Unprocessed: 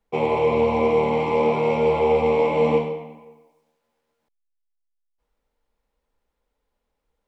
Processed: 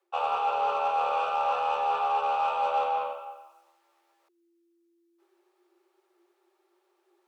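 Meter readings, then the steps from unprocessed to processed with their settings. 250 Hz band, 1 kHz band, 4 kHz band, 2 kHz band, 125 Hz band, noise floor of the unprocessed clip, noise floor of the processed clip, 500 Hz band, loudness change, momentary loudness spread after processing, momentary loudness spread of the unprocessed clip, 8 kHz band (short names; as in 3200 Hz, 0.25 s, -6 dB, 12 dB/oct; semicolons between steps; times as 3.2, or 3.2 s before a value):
under -30 dB, +1.0 dB, -2.5 dB, -6.5 dB, under -30 dB, -78 dBFS, -73 dBFS, -15.0 dB, -7.0 dB, 5 LU, 4 LU, n/a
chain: frequency shift +340 Hz; reverse; compressor 6:1, threshold -32 dBFS, peak gain reduction 16 dB; reverse; added harmonics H 4 -38 dB, 7 -34 dB, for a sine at -23 dBFS; HPF 76 Hz; gain +6.5 dB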